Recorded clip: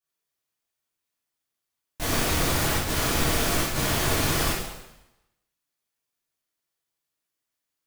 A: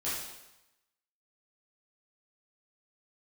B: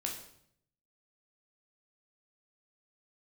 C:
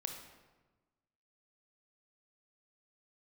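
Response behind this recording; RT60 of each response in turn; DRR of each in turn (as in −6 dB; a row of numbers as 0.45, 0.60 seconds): A; 0.95, 0.65, 1.2 seconds; −10.5, 0.0, 4.0 decibels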